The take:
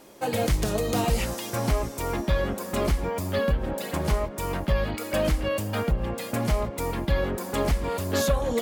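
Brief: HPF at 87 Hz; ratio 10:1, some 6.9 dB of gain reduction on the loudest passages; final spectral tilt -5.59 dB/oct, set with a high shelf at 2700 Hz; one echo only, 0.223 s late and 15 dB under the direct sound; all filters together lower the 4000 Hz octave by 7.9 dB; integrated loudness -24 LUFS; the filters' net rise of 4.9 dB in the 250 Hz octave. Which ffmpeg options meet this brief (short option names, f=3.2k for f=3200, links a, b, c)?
-af "highpass=87,equalizer=f=250:t=o:g=6.5,highshelf=f=2.7k:g=-6,equalizer=f=4k:t=o:g=-5.5,acompressor=threshold=-25dB:ratio=10,aecho=1:1:223:0.178,volume=6.5dB"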